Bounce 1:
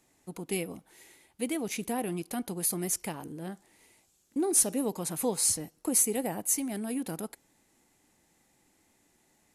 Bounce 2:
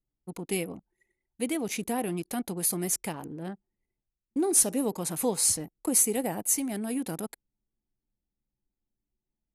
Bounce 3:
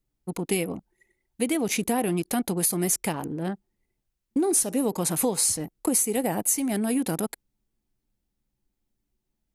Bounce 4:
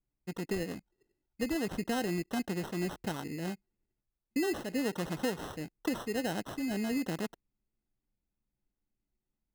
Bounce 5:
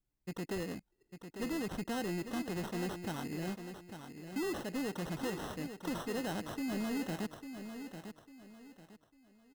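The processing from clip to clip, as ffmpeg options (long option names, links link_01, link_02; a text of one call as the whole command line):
ffmpeg -i in.wav -af "anlmdn=0.0158,volume=2dB" out.wav
ffmpeg -i in.wav -af "acompressor=threshold=-28dB:ratio=6,volume=7.5dB" out.wav
ffmpeg -i in.wav -af "aemphasis=mode=reproduction:type=75kf,acrusher=samples=19:mix=1:aa=0.000001,volume=-7dB" out.wav
ffmpeg -i in.wav -af "asoftclip=type=tanh:threshold=-32.5dB,aecho=1:1:849|1698|2547|3396:0.355|0.114|0.0363|0.0116" out.wav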